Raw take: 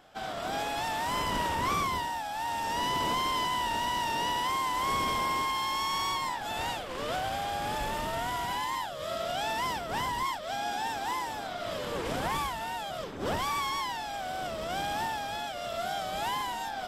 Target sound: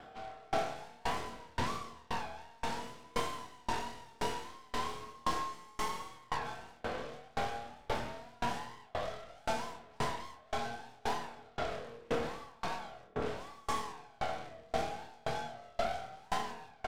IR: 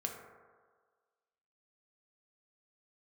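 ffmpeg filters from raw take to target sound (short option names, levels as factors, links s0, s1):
-filter_complex "[0:a]aemphasis=mode=reproduction:type=75kf,areverse,acompressor=mode=upward:threshold=0.0112:ratio=2.5,areverse,alimiter=level_in=1.41:limit=0.0631:level=0:latency=1:release=62,volume=0.708,aeval=exprs='0.0447*(cos(1*acos(clip(val(0)/0.0447,-1,1)))-cos(1*PI/2))+0.0158*(cos(4*acos(clip(val(0)/0.0447,-1,1)))-cos(4*PI/2))+0.00562*(cos(5*acos(clip(val(0)/0.0447,-1,1)))-cos(5*PI/2))':c=same,asplit=2[s0][s1];[s1]asoftclip=type=tanh:threshold=0.01,volume=0.631[s2];[s0][s2]amix=inputs=2:normalize=0,asplit=2[s3][s4];[s4]adelay=26,volume=0.668[s5];[s3][s5]amix=inputs=2:normalize=0[s6];[1:a]atrim=start_sample=2205[s7];[s6][s7]afir=irnorm=-1:irlink=0,aeval=exprs='val(0)*pow(10,-32*if(lt(mod(1.9*n/s,1),2*abs(1.9)/1000),1-mod(1.9*n/s,1)/(2*abs(1.9)/1000),(mod(1.9*n/s,1)-2*abs(1.9)/1000)/(1-2*abs(1.9)/1000))/20)':c=same,volume=0.841"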